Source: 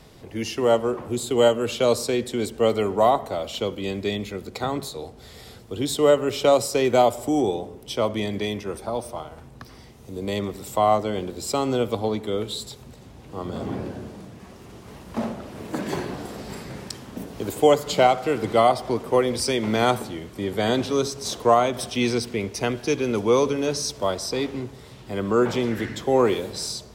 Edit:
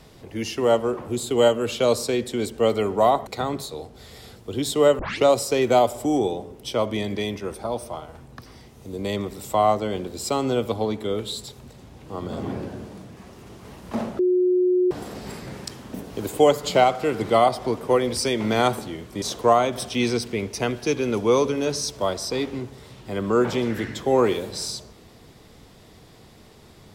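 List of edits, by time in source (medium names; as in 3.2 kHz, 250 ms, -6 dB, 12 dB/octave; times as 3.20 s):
3.27–4.50 s: delete
6.22 s: tape start 0.25 s
15.42–16.14 s: bleep 363 Hz -16 dBFS
20.45–21.23 s: delete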